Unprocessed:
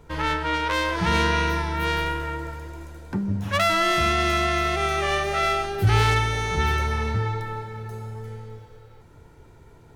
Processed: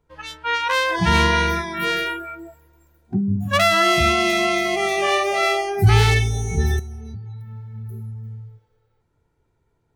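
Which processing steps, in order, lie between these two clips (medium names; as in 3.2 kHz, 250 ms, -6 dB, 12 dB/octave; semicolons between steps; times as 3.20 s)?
spectral noise reduction 24 dB; 6.79–7.74 s: compression 16:1, threshold -36 dBFS, peak gain reduction 15.5 dB; trim +5.5 dB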